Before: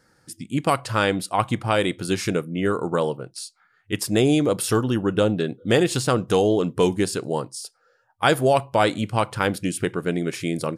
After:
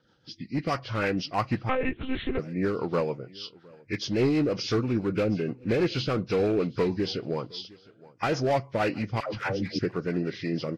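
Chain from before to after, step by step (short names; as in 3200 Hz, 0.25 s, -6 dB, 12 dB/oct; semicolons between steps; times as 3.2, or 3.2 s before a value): nonlinear frequency compression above 1400 Hz 1.5:1; in parallel at -5 dB: wavefolder -17 dBFS; 9.2–9.79 on the sum: dispersion lows, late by 0.138 s, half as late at 540 Hz; on a send: feedback echo 0.712 s, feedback 21%, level -23.5 dB; on the sum: rotary speaker horn 6.3 Hz; 1.69–2.39 monotone LPC vocoder at 8 kHz 260 Hz; gain -6 dB; Vorbis 48 kbps 44100 Hz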